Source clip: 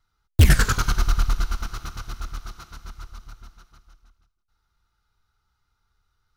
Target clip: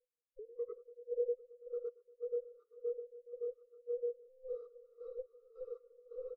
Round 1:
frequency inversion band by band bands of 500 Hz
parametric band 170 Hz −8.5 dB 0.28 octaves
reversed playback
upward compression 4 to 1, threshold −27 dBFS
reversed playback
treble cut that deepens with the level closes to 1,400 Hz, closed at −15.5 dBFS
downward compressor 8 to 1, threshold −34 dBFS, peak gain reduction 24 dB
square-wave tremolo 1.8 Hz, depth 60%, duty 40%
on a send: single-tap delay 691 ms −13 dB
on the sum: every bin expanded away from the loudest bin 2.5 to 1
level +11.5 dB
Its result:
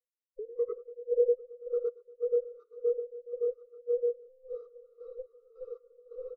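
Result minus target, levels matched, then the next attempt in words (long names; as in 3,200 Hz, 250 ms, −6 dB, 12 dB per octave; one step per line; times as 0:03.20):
downward compressor: peak gain reduction −10 dB
frequency inversion band by band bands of 500 Hz
parametric band 170 Hz −8.5 dB 0.28 octaves
reversed playback
upward compression 4 to 1, threshold −27 dBFS
reversed playback
treble cut that deepens with the level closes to 1,400 Hz, closed at −15.5 dBFS
downward compressor 8 to 1, threshold −45.5 dBFS, peak gain reduction 34 dB
square-wave tremolo 1.8 Hz, depth 60%, duty 40%
on a send: single-tap delay 691 ms −13 dB
on the sum: every bin expanded away from the loudest bin 2.5 to 1
level +11.5 dB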